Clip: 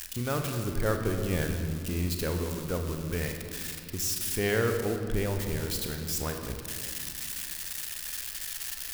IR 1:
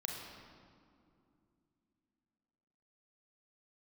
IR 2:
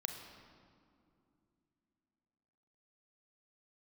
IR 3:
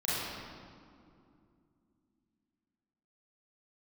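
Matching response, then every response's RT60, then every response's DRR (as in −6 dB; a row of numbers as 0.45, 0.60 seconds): 2; 2.6, 2.6, 2.5 seconds; −0.5, 4.0, −10.5 decibels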